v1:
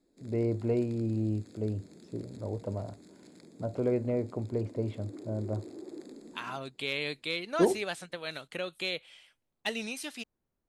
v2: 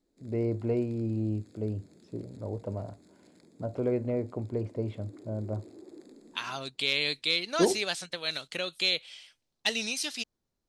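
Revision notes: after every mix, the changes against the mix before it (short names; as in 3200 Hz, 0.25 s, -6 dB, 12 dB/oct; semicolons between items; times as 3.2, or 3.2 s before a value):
second voice: add bell 5100 Hz +13 dB 1.5 oct; background -5.0 dB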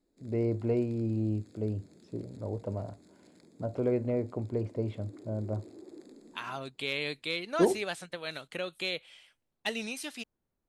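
second voice: add bell 5100 Hz -13 dB 1.5 oct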